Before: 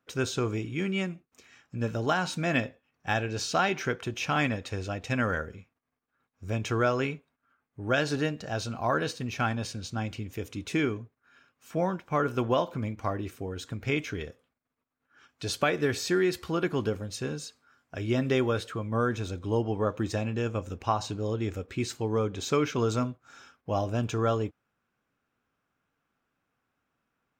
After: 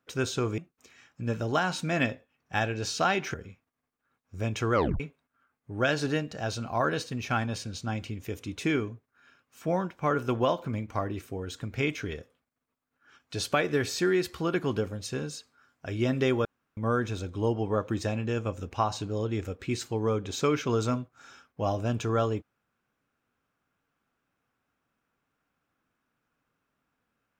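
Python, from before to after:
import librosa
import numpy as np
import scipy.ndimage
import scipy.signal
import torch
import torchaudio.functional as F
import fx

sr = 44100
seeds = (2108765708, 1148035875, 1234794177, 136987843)

y = fx.edit(x, sr, fx.cut(start_s=0.58, length_s=0.54),
    fx.cut(start_s=3.88, length_s=1.55),
    fx.tape_stop(start_s=6.83, length_s=0.26),
    fx.room_tone_fill(start_s=18.54, length_s=0.32), tone=tone)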